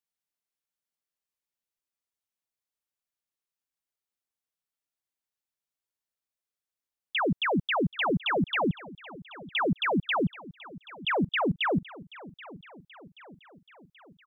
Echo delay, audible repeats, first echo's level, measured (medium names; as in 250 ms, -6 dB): 780 ms, 4, -19.0 dB